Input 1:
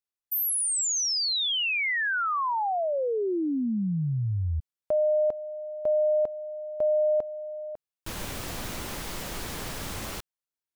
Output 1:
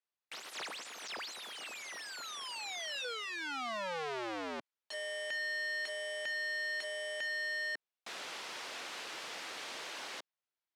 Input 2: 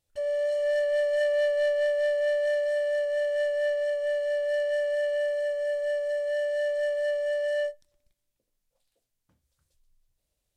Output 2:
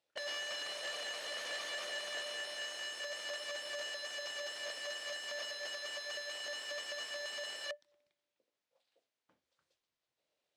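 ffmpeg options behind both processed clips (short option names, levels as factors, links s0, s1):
-filter_complex "[0:a]acrossover=split=480|2000[s0][s1][s2];[s0]acompressor=threshold=0.0178:ratio=4:release=414:knee=2.83:detection=peak[s3];[s3][s1][s2]amix=inputs=3:normalize=0,aeval=exprs='(mod(53.1*val(0)+1,2)-1)/53.1':c=same,highpass=370,lowpass=4100,volume=1.19"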